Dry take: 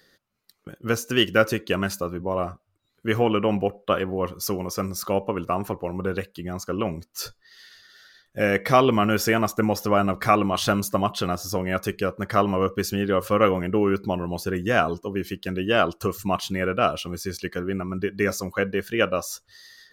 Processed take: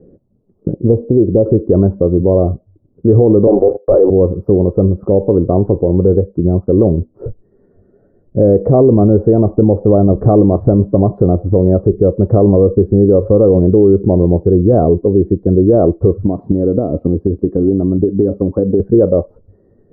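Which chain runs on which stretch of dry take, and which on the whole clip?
0:00.73–0:01.46: Chebyshev low-pass filter 1,000 Hz, order 4 + downward compressor 2.5 to 1, threshold −26 dBFS
0:03.47–0:04.10: variable-slope delta modulation 64 kbit/s + high-pass filter 340 Hz 24 dB per octave + leveller curve on the samples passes 3
0:16.24–0:18.80: high-pass filter 57 Hz 6 dB per octave + parametric band 280 Hz +8 dB 0.29 octaves + downward compressor 5 to 1, threshold −27 dBFS
whole clip: dynamic equaliser 210 Hz, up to −8 dB, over −38 dBFS, Q 1.1; inverse Chebyshev low-pass filter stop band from 2,800 Hz, stop band 80 dB; boost into a limiter +25 dB; level −1 dB

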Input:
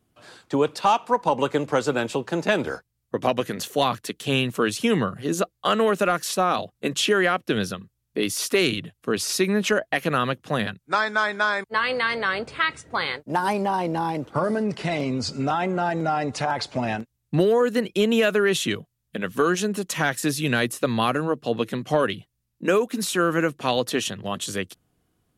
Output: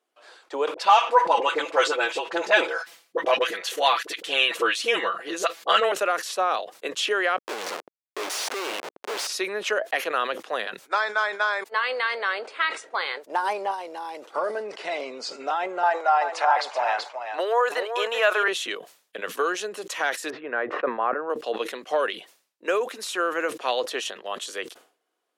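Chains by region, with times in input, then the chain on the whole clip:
0:00.74–0:05.92: parametric band 2,500 Hz +6 dB 2.1 octaves + comb filter 6 ms + all-pass dispersion highs, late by 42 ms, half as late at 610 Hz
0:07.38–0:09.27: comparator with hysteresis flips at −35.5 dBFS + envelope flattener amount 100%
0:13.71–0:14.36: high-shelf EQ 4,000 Hz +10.5 dB + downward compressor 4 to 1, threshold −28 dBFS
0:15.83–0:18.48: high-pass filter 600 Hz + parametric band 980 Hz +9 dB 1.7 octaves + single-tap delay 382 ms −8 dB
0:20.30–0:21.30: low-pass filter 1,700 Hz 24 dB per octave + level that may fall only so fast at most 32 dB per second
whole clip: high-pass filter 430 Hz 24 dB per octave; high-shelf EQ 9,300 Hz −12 dB; level that may fall only so fast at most 130 dB per second; level −1.5 dB

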